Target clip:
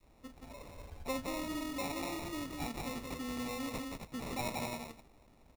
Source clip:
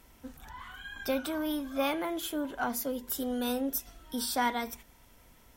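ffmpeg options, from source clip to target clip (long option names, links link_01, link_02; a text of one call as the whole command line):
ffmpeg -i in.wav -filter_complex "[0:a]aecho=1:1:177.8|262.4:0.562|0.447,asplit=2[link_01][link_02];[link_02]volume=30.5dB,asoftclip=hard,volume=-30.5dB,volume=-5.5dB[link_03];[link_01][link_03]amix=inputs=2:normalize=0,acrusher=samples=28:mix=1:aa=0.000001,adynamicequalizer=threshold=0.00794:dfrequency=560:dqfactor=0.71:tfrequency=560:tqfactor=0.71:attack=5:release=100:ratio=0.375:range=2.5:mode=cutabove:tftype=bell,volume=-9dB" out.wav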